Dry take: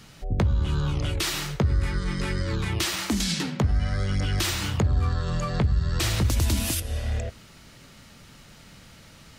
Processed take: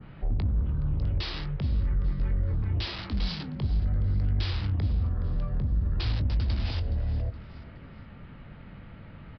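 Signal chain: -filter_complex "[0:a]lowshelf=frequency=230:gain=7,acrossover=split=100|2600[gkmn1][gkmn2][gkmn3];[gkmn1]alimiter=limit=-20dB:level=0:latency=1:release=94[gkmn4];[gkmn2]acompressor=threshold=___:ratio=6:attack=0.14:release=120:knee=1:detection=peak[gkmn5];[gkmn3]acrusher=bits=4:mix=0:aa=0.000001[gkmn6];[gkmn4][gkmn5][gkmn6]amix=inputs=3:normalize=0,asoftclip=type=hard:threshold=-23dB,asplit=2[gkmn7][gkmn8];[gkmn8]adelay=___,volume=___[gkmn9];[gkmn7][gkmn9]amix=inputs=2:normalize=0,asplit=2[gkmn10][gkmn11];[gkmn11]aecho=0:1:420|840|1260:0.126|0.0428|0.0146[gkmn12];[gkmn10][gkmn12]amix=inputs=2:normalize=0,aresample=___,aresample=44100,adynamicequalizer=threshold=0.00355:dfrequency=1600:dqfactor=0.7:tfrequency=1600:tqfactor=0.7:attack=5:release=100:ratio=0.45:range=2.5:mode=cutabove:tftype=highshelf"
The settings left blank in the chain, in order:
-36dB, 20, -12dB, 11025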